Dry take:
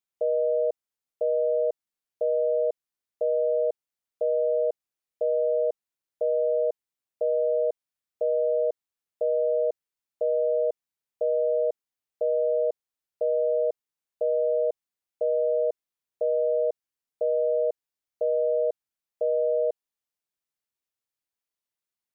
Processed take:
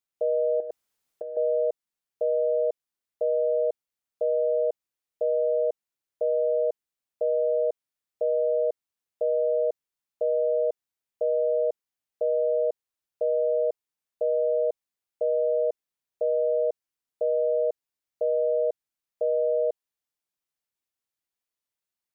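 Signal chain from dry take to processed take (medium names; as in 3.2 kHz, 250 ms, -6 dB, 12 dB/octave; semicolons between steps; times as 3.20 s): 0.60–1.37 s: compressor with a negative ratio -31 dBFS, ratio -0.5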